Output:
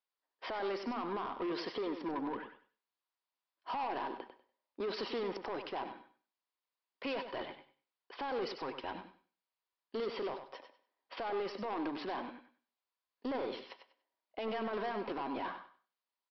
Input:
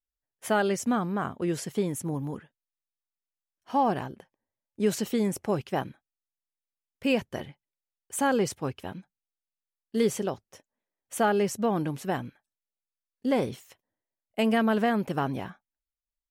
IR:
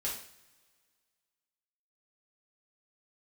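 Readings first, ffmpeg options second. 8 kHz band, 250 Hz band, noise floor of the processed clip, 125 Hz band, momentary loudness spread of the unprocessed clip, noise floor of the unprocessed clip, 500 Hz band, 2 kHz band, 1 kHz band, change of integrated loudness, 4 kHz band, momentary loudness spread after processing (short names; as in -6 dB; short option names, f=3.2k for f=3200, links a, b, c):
under -30 dB, -13.5 dB, under -85 dBFS, -22.0 dB, 16 LU, under -85 dBFS, -10.0 dB, -10.0 dB, -8.5 dB, -11.5 dB, -6.0 dB, 15 LU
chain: -filter_complex "[0:a]highpass=f=290:w=0.5412,highpass=f=290:w=1.3066,acompressor=threshold=-32dB:ratio=2.5,equalizer=f=950:w=3.2:g=12,alimiter=level_in=4dB:limit=-24dB:level=0:latency=1:release=10,volume=-4dB,bandreject=f=890:w=12,aresample=11025,asoftclip=type=tanh:threshold=-36.5dB,aresample=44100,aecho=1:1:97|194|291:0.355|0.071|0.0142,asplit=2[a][b];[1:a]atrim=start_sample=2205,afade=t=out:st=0.19:d=0.01,atrim=end_sample=8820,adelay=69[c];[b][c]afir=irnorm=-1:irlink=0,volume=-20.5dB[d];[a][d]amix=inputs=2:normalize=0,volume=3.5dB"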